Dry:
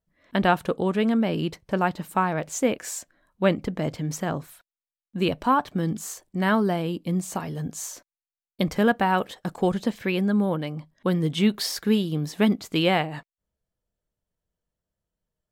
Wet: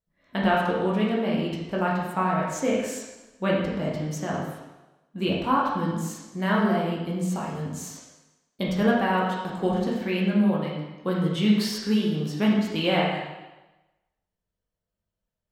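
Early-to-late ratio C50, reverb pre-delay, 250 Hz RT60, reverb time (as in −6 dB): 1.0 dB, 10 ms, 1.0 s, 1.1 s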